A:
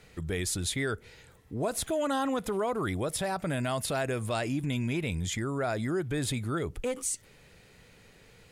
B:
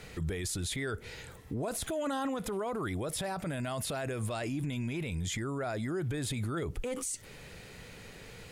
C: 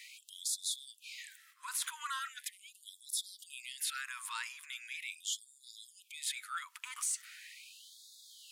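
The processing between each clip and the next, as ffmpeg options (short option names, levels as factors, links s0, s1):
-filter_complex "[0:a]asplit=2[s0][s1];[s1]acompressor=threshold=0.0141:ratio=6,volume=1.41[s2];[s0][s2]amix=inputs=2:normalize=0,alimiter=level_in=1.41:limit=0.0631:level=0:latency=1:release=20,volume=0.708"
-af "aeval=exprs='0.0473*(cos(1*acos(clip(val(0)/0.0473,-1,1)))-cos(1*PI/2))+0.00133*(cos(2*acos(clip(val(0)/0.0473,-1,1)))-cos(2*PI/2))+0.00106*(cos(3*acos(clip(val(0)/0.0473,-1,1)))-cos(3*PI/2))':c=same,afftfilt=real='re*gte(b*sr/1024,870*pow(3400/870,0.5+0.5*sin(2*PI*0.4*pts/sr)))':imag='im*gte(b*sr/1024,870*pow(3400/870,0.5+0.5*sin(2*PI*0.4*pts/sr)))':win_size=1024:overlap=0.75,volume=1.26"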